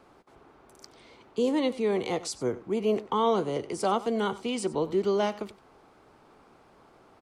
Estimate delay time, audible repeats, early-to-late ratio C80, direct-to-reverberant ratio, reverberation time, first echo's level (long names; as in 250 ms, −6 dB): 93 ms, 1, no reverb audible, no reverb audible, no reverb audible, −17.5 dB